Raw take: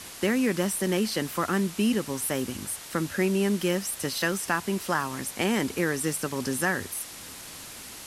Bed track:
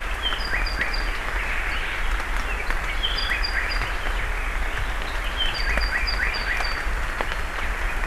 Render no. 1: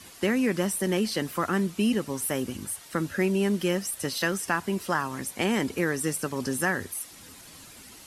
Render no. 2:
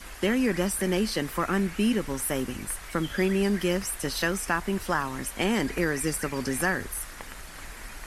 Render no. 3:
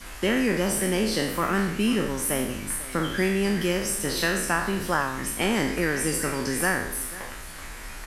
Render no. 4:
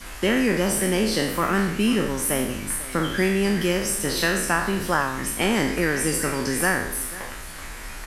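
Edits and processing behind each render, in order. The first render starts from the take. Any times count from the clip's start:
noise reduction 9 dB, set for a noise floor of -43 dBFS
add bed track -16.5 dB
spectral sustain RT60 0.73 s; delay 496 ms -17.5 dB
trim +2.5 dB

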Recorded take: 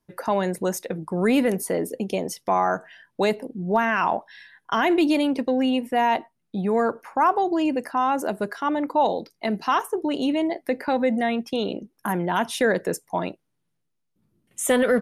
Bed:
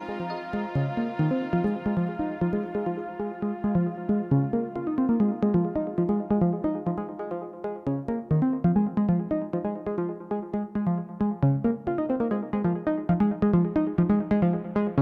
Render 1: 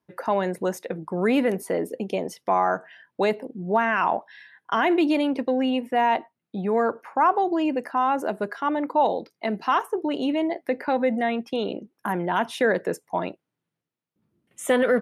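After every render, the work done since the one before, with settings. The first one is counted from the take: high-pass 66 Hz; tone controls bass -4 dB, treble -9 dB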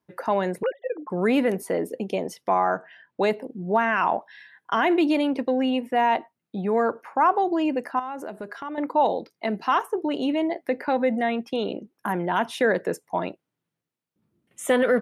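0.63–1.10 s: formants replaced by sine waves; 2.54–3.24 s: distance through air 84 m; 7.99–8.78 s: compression 3:1, threshold -32 dBFS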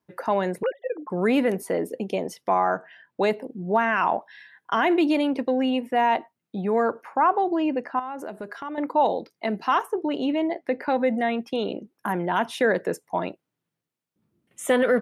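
7.20–8.19 s: distance through air 120 m; 9.93–10.82 s: distance through air 64 m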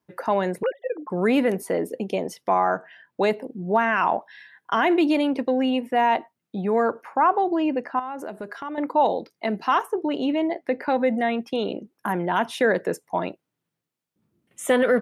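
trim +1 dB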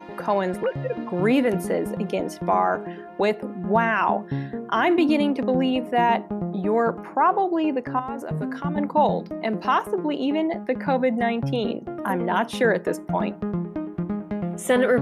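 add bed -5.5 dB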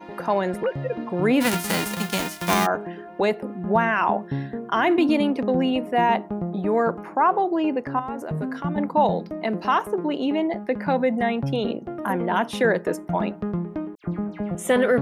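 1.40–2.65 s: formants flattened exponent 0.3; 13.95–14.55 s: phase dispersion lows, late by 90 ms, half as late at 2.2 kHz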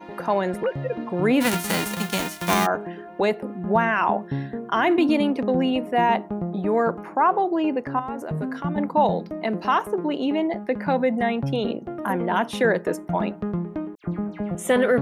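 band-stop 5 kHz, Q 23

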